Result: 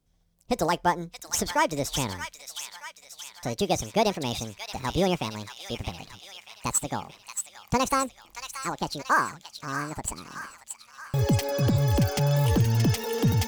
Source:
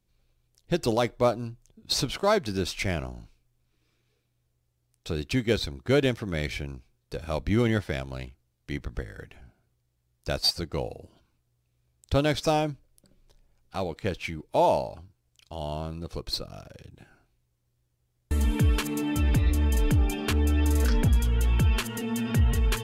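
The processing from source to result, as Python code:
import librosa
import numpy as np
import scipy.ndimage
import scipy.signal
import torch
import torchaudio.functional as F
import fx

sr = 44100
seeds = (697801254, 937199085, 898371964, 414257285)

p1 = fx.speed_glide(x, sr, from_pct=140, to_pct=199)
y = p1 + fx.echo_wet_highpass(p1, sr, ms=627, feedback_pct=58, hz=1700.0, wet_db=-6, dry=0)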